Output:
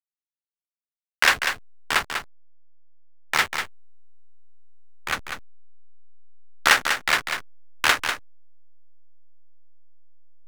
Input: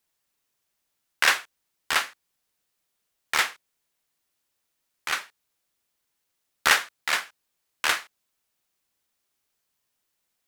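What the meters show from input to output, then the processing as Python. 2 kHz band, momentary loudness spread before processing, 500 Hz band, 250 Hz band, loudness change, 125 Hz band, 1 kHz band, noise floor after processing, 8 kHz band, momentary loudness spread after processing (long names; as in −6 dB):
+3.5 dB, 9 LU, +5.0 dB, +7.5 dB, +2.5 dB, can't be measured, +4.0 dB, below −85 dBFS, +1.0 dB, 16 LU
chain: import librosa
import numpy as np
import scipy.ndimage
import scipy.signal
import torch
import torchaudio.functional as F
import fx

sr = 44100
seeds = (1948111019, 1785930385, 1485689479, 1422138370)

p1 = fx.rider(x, sr, range_db=10, speed_s=0.5)
p2 = x + (p1 * librosa.db_to_amplitude(-1.0))
p3 = fx.backlash(p2, sr, play_db=-17.5)
p4 = p3 + 10.0 ** (-7.0 / 20.0) * np.pad(p3, (int(195 * sr / 1000.0), 0))[:len(p3)]
y = p4 * librosa.db_to_amplitude(-1.0)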